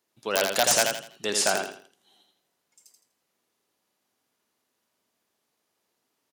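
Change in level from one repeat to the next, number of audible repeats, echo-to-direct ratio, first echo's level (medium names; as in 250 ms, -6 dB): -10.0 dB, 4, -4.0 dB, -4.5 dB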